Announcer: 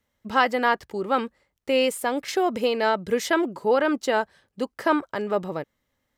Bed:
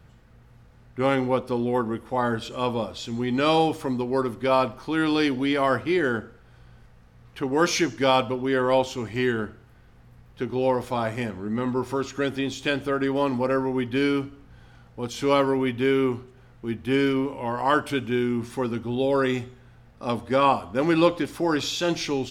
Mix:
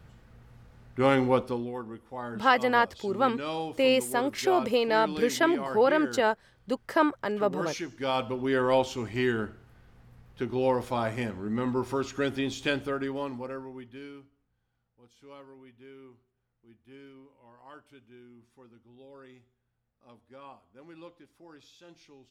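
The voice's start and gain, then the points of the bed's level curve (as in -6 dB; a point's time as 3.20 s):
2.10 s, -2.0 dB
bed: 1.41 s -0.5 dB
1.75 s -13 dB
7.87 s -13 dB
8.44 s -3 dB
12.70 s -3 dB
14.57 s -28.5 dB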